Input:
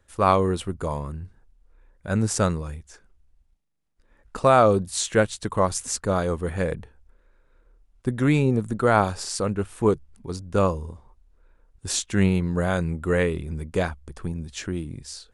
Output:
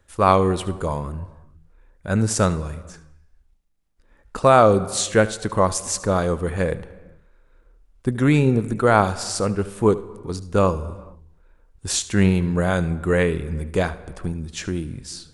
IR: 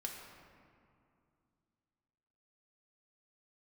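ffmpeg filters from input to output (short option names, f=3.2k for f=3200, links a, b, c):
-filter_complex "[0:a]asplit=2[a][b];[1:a]atrim=start_sample=2205,afade=t=out:st=0.45:d=0.01,atrim=end_sample=20286,adelay=74[c];[b][c]afir=irnorm=-1:irlink=0,volume=-13.5dB[d];[a][d]amix=inputs=2:normalize=0,volume=3dB"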